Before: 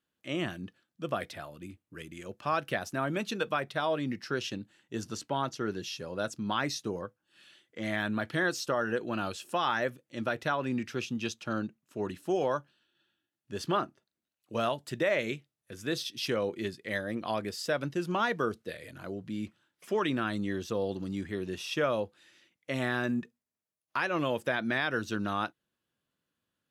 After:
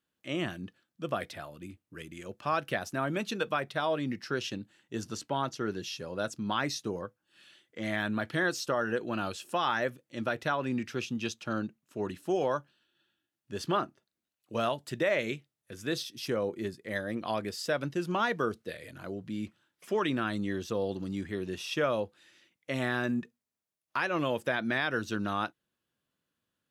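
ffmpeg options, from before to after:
-filter_complex "[0:a]asettb=1/sr,asplit=3[a][b][c];[a]atrim=end=16.054[d];[b]atrim=start=16.05:end=16.96,asetpts=PTS-STARTPTS,afade=t=in:d=0.004:c=qsin,afade=t=out:st=0.906:d=0.004:c=qsin,equalizer=f=3.1k:t=o:w=1.6:g=-7[e];[c]atrim=start=16.956[f];[d][e]acrossfade=d=0.004:c1=hsin:c2=qsin[g];[g][f]acrossfade=d=0.004:c1=qsin:c2=hsin"

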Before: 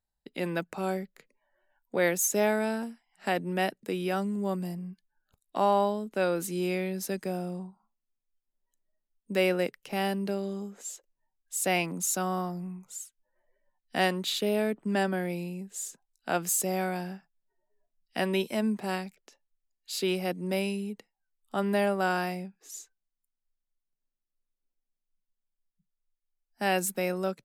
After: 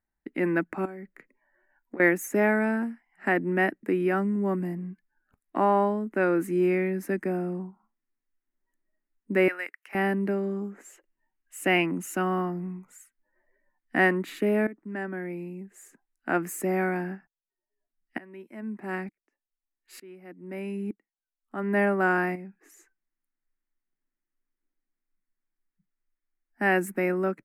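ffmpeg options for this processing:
-filter_complex "[0:a]asettb=1/sr,asplit=3[a][b][c];[a]atrim=end=0.854[d];[b]atrim=start=0.85:end=2,asetpts=PTS-STARTPTS,afade=t=in:d=0.004:c=qsin,afade=t=out:st=1.146:d=0.004:c=qsin,acompressor=threshold=-39dB:ratio=16:attack=3.2:release=140:knee=1:detection=peak[e];[c]atrim=start=1.996[f];[d][e]acrossfade=d=0.004:c1=hsin:c2=qsin[g];[g][f]acrossfade=d=0.004:c1=qsin:c2=hsin,asettb=1/sr,asplit=3[h][i][j];[h]atrim=end=9.484[k];[i]atrim=start=9.48:end=9.95,asetpts=PTS-STARTPTS,afade=t=in:d=0.004:c=qsin,afade=t=out:st=0.466:d=0.004:c=qsin,highpass=1.3k[l];[j]atrim=start=9.946[m];[k][l]acrossfade=d=0.004:c1=hsin:c2=qsin[n];[n][m]acrossfade=d=0.004:c1=qsin:c2=hsin,asettb=1/sr,asplit=3[o][p][q];[o]atrim=end=10.924[r];[p]atrim=start=10.92:end=12.58,asetpts=PTS-STARTPTS,afade=t=in:d=0.004:c=qsin,afade=t=out:st=1.656:d=0.004:c=qsin,equalizer=f=2.9k:t=o:w=0.27:g=11[s];[q]atrim=start=12.576[t];[r][s]acrossfade=d=0.004:c1=hsin:c2=qsin[u];[u][t]acrossfade=d=0.004:c1=qsin:c2=hsin,asplit=3[v][w][x];[v]afade=t=out:st=17.14:d=0.02[y];[w]aeval=exprs='val(0)*pow(10,-27*if(lt(mod(-1.1*n/s,1),2*abs(-1.1)/1000),1-mod(-1.1*n/s,1)/(2*abs(-1.1)/1000),(mod(-1.1*n/s,1)-2*abs(-1.1)/1000)/(1-2*abs(-1.1)/1000))/20)':c=same,afade=t=in:st=17.14:d=0.02,afade=t=out:st=21.76:d=0.02[z];[x]afade=t=in:st=21.76:d=0.02[aa];[y][z][aa]amix=inputs=3:normalize=0,asettb=1/sr,asplit=3[ab][ac][ad];[ab]atrim=end=22.354[ae];[ac]atrim=start=22.35:end=22.79,asetpts=PTS-STARTPTS,afade=t=in:d=0.004:c=qsin,afade=t=out:st=0.436:d=0.004:c=qsin,acompressor=threshold=-40dB:ratio=6:attack=3.2:release=140:knee=1:detection=peak[af];[ad]atrim=start=22.786[ag];[ae][af]acrossfade=d=0.004:c1=hsin:c2=qsin[ah];[ah][ag]acrossfade=d=0.004:c1=qsin:c2=hsin,asplit=2[ai][aj];[ai]atrim=end=14.67,asetpts=PTS-STARTPTS,afade=t=out:st=14.666:d=0.004:c=hsin:silence=0.158489[ak];[aj]atrim=start=14.67,asetpts=PTS-STARTPTS,afade=t=in:d=1.93:silence=0.158489[al];[ak][al]concat=n=2:v=0:a=1,firequalizer=gain_entry='entry(140,0);entry(310,12);entry(470,-1);entry(1900,9);entry(3500,-17);entry(10000,-8)':delay=0.05:min_phase=1"

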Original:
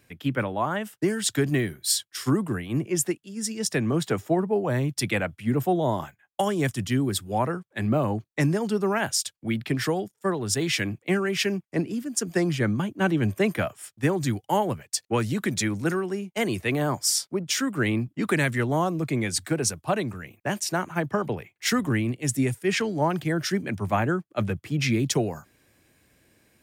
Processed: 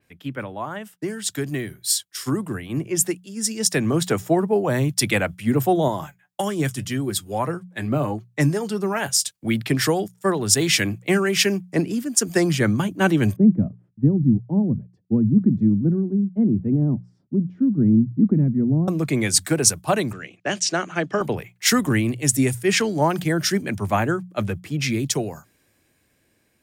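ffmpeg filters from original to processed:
-filter_complex "[0:a]asettb=1/sr,asplit=3[a][b][c];[a]atrim=end=5.884[d];[b]atrim=start=5.88:end=9.31,asetpts=PTS-STARTPTS,afade=t=in:d=0.004:c=qsin,afade=t=out:st=3.426:d=0.004:c=qsin,flanger=delay=5.3:depth=2.2:regen=55:speed=1.7:shape=triangular[e];[c]atrim=start=9.306[f];[d][e]acrossfade=d=0.004:c1=hsin:c2=qsin[g];[g][f]acrossfade=d=0.004:c1=qsin:c2=hsin,asettb=1/sr,asplit=3[h][i][j];[h]atrim=end=13.364[k];[i]atrim=start=13.36:end=18.88,asetpts=PTS-STARTPTS,afade=t=in:d=0.004:c=qsin,afade=t=out:st=5.516:d=0.004:c=qsin,lowpass=f=220:t=q:w=2.6[l];[j]atrim=start=18.876[m];[k][l]acrossfade=d=0.004:c1=hsin:c2=qsin[n];[n][m]acrossfade=d=0.004:c1=qsin:c2=hsin,asettb=1/sr,asplit=3[o][p][q];[o]atrim=end=20.134[r];[p]atrim=start=20.13:end=21.21,asetpts=PTS-STARTPTS,afade=t=in:d=0.004:c=qsin,afade=t=out:st=1.076:d=0.004:c=qsin,highpass=f=130:w=0.5412,highpass=f=130:w=1.3066,equalizer=f=140:t=q:w=4:g=-9,equalizer=f=220:t=q:w=4:g=-5,equalizer=f=940:t=q:w=4:g=-9,equalizer=f=3k:t=q:w=4:g=4,lowpass=f=6.8k:w=0.5412,lowpass=f=6.8k:w=1.3066[s];[q]atrim=start=21.206[t];[r][s]acrossfade=d=0.004:c1=hsin:c2=qsin[u];[u][t]acrossfade=d=0.004:c1=qsin:c2=hsin,bandreject=f=60:t=h:w=6,bandreject=f=120:t=h:w=6,bandreject=f=180:t=h:w=6,dynaudnorm=f=530:g=11:m=11.5dB,adynamicequalizer=threshold=0.0224:dfrequency=4400:dqfactor=0.7:tfrequency=4400:tqfactor=0.7:attack=5:release=100:ratio=0.375:range=3:mode=boostabove:tftype=highshelf,volume=-4dB"

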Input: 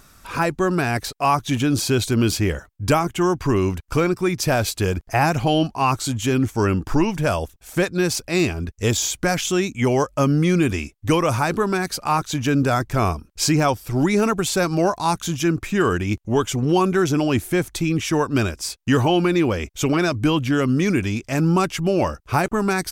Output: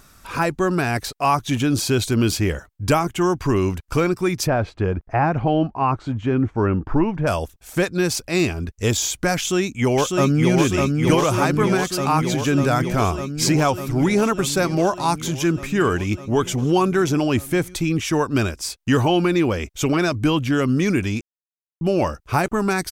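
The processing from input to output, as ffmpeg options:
-filter_complex "[0:a]asplit=3[a][b][c];[a]afade=t=out:st=4.46:d=0.02[d];[b]lowpass=1.6k,afade=t=in:st=4.46:d=0.02,afade=t=out:st=7.26:d=0.02[e];[c]afade=t=in:st=7.26:d=0.02[f];[d][e][f]amix=inputs=3:normalize=0,asplit=2[g][h];[h]afade=t=in:st=9.37:d=0.01,afade=t=out:st=10.54:d=0.01,aecho=0:1:600|1200|1800|2400|3000|3600|4200|4800|5400|6000|6600|7200:0.707946|0.566357|0.453085|0.362468|0.289975|0.23198|0.185584|0.148467|0.118774|0.0950189|0.0760151|0.0608121[i];[g][i]amix=inputs=2:normalize=0,asplit=3[j][k][l];[j]atrim=end=21.21,asetpts=PTS-STARTPTS,afade=t=out:st=21.206:d=0.004:c=hsin[m];[k]atrim=start=21.21:end=21.81,asetpts=PTS-STARTPTS,volume=0[n];[l]atrim=start=21.81,asetpts=PTS-STARTPTS,afade=t=in:d=0.004:c=hsin[o];[m][n][o]concat=n=3:v=0:a=1"

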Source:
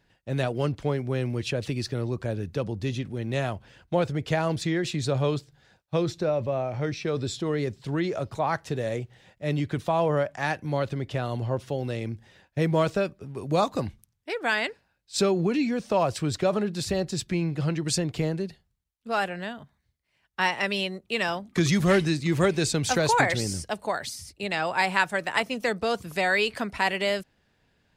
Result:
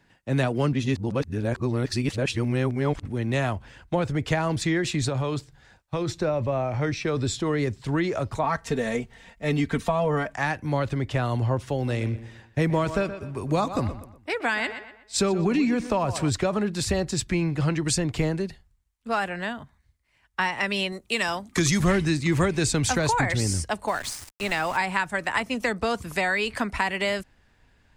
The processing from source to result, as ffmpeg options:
-filter_complex "[0:a]asettb=1/sr,asplit=3[a][b][c];[a]atrim=end=5.084[d];[b]atrim=start=5.08:end=6.22,asetpts=PTS-STARTPTS,afade=t=in:d=0.004:c=qsin,afade=t=out:st=1.136:d=0.004:c=qsin,acompressor=threshold=-25dB:ratio=6:attack=3.2:release=140:knee=1:detection=peak[e];[c]atrim=start=6.216[f];[d][e]acrossfade=d=0.004:c1=hsin:c2=qsin[g];[g][f]acrossfade=d=0.004:c1=qsin:c2=hsin,asettb=1/sr,asplit=3[h][i][j];[h]atrim=end=8.434[k];[i]atrim=start=8.43:end=10.35,asetpts=PTS-STARTPTS,afade=t=in:d=0.004:c=qsin,afade=t=out:st=1.916:d=0.004:c=qsin,aecho=1:1:4.4:0.79,atrim=end_sample=84672[l];[j]atrim=start=10.346[m];[k][l]acrossfade=d=0.004:c1=hsin:c2=qsin[n];[n][m]acrossfade=d=0.004:c1=qsin:c2=hsin,asettb=1/sr,asplit=3[o][p][q];[o]atrim=end=11.754[r];[p]atrim=start=11.75:end=16.3,asetpts=PTS-STARTPTS,afade=t=in:d=0.004:c=qsin,afade=t=out:st=4.546:d=0.004:c=qsin,asplit=2[s][t];[t]adelay=122,lowpass=f=4k:p=1,volume=-13.5dB,asplit=2[u][v];[v]adelay=122,lowpass=f=4k:p=1,volume=0.38,asplit=2[w][x];[x]adelay=122,lowpass=f=4k:p=1,volume=0.38,asplit=2[y][z];[z]adelay=122,lowpass=f=4k:p=1,volume=0.38[aa];[s][u][w][y][aa]amix=inputs=5:normalize=0,atrim=end_sample=200655[ab];[q]atrim=start=16.296[ac];[r][ab]acrossfade=d=0.004:c1=hsin:c2=qsin[ad];[ad][ac]acrossfade=d=0.004:c1=qsin:c2=hsin,asettb=1/sr,asplit=3[ae][af][ag];[ae]atrim=end=20.924[ah];[af]atrim=start=20.92:end=21.8,asetpts=PTS-STARTPTS,afade=t=in:d=0.004:c=qsin,afade=t=out:st=0.876:d=0.004:c=qsin,bass=f=250:g=-3,treble=f=4k:g=8[ai];[ag]atrim=start=21.796[aj];[ah][ai]acrossfade=d=0.004:c1=hsin:c2=qsin[ak];[ak][aj]acrossfade=d=0.004:c1=qsin:c2=hsin,asplit=3[al][am][an];[al]afade=t=out:st=23.87:d=0.02[ao];[am]aeval=exprs='val(0)*gte(abs(val(0)),0.0133)':c=same,afade=t=in:st=23.87:d=0.02,afade=t=out:st=24.76:d=0.02[ap];[an]afade=t=in:st=24.76:d=0.02[aq];[ao][ap][aq]amix=inputs=3:normalize=0,asplit=3[ar][as][at];[ar]atrim=end=0.732[au];[as]atrim=start=0.728:end=3.052,asetpts=PTS-STARTPTS,areverse[av];[at]atrim=start=3.048[aw];[au][av]acrossfade=d=0.004:c1=hsin:c2=hsin[ax];[ax][aw]acrossfade=d=0.004:c1=hsin:c2=hsin,equalizer=f=125:t=o:w=1:g=3,equalizer=f=250:t=o:w=1:g=7,equalizer=f=1k:t=o:w=1:g=6,equalizer=f=2k:t=o:w=1:g=5,equalizer=f=8k:t=o:w=1:g=6,acrossover=split=270[ay][az];[az]acompressor=threshold=-22dB:ratio=5[ba];[ay][ba]amix=inputs=2:normalize=0,asubboost=boost=6.5:cutoff=65"

